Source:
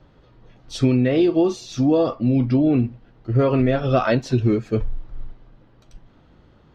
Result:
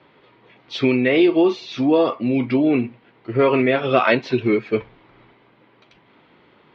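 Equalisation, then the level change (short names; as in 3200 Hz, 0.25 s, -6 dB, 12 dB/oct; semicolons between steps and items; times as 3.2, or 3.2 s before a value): speaker cabinet 200–3600 Hz, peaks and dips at 400 Hz +5 dB, 980 Hz +6 dB, 2200 Hz +9 dB; high shelf 2200 Hz +11 dB; 0.0 dB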